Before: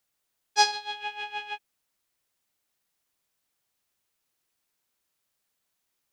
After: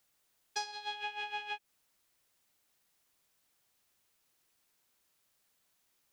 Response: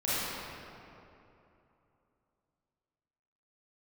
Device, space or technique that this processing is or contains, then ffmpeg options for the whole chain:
serial compression, leveller first: -af "acompressor=threshold=0.0447:ratio=2,acompressor=threshold=0.0112:ratio=8,volume=1.5"

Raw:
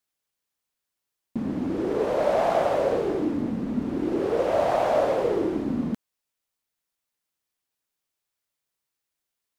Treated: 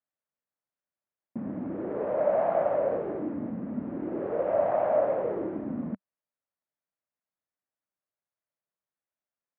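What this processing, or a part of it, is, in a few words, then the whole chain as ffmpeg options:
bass cabinet: -af "highpass=82,equalizer=f=190:t=q:w=4:g=3,equalizer=f=410:t=q:w=4:g=-3,equalizer=f=600:t=q:w=4:g=7,lowpass=f=2000:w=0.5412,lowpass=f=2000:w=1.3066,volume=0.447"

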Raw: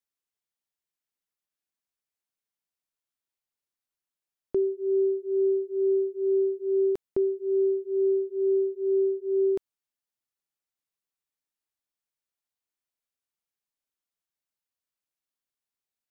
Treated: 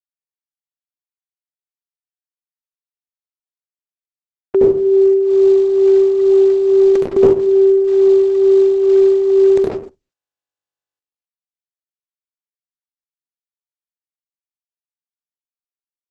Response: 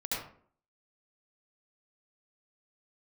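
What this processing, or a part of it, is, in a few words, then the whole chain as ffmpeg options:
speakerphone in a meeting room: -filter_complex "[1:a]atrim=start_sample=2205[s0];[0:a][s0]afir=irnorm=-1:irlink=0,dynaudnorm=f=920:g=7:m=5.62,agate=range=0.00794:threshold=0.0224:ratio=16:detection=peak,volume=1.33" -ar 48000 -c:a libopus -b:a 12k

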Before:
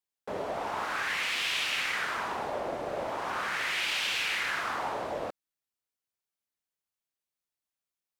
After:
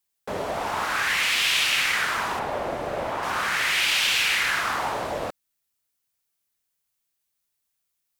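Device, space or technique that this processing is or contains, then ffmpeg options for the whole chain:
smiley-face EQ: -filter_complex "[0:a]lowshelf=f=150:g=3.5,equalizer=f=420:t=o:w=2.6:g=-4,highshelf=f=7600:g=7,asettb=1/sr,asplit=3[s0][s1][s2];[s0]atrim=end=2.394[s3];[s1]atrim=start=2.39:end=3.23,asetpts=PTS-STARTPTS,afade=t=in:d=0.004:c=qsin,afade=t=out:st=0.836:d=0.004:c=qsin,acrossover=split=3400[s4][s5];[s5]acompressor=threshold=0.00141:ratio=4:attack=1:release=60[s6];[s4][s6]amix=inputs=2:normalize=0[s7];[s2]atrim=start=3.226[s8];[s3][s7]acrossfade=d=0.004:c1=hsin:c2=qsin[s9];[s9][s8]acrossfade=d=0.004:c1=qsin:c2=hsin,volume=2.51"

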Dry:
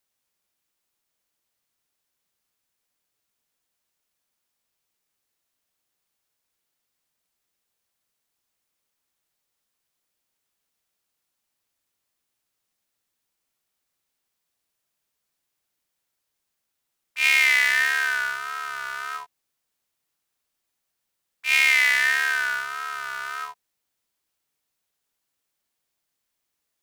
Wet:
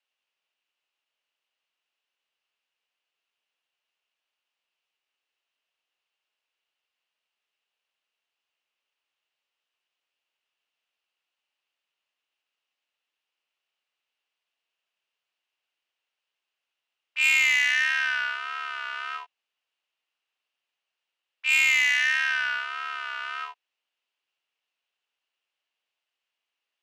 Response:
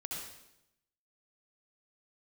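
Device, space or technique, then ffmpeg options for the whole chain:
intercom: -af "highpass=500,lowpass=4000,equalizer=f=2800:t=o:w=0.39:g=11,asoftclip=type=tanh:threshold=0.282,volume=0.75"

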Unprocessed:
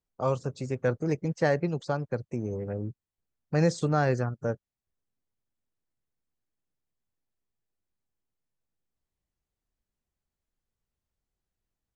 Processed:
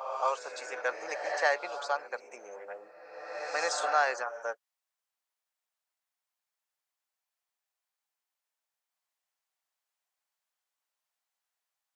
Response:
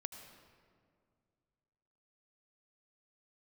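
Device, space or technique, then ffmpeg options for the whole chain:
ghost voice: -filter_complex "[0:a]areverse[s0];[1:a]atrim=start_sample=2205[s1];[s0][s1]afir=irnorm=-1:irlink=0,areverse,highpass=f=720:w=0.5412,highpass=f=720:w=1.3066,volume=2.51"

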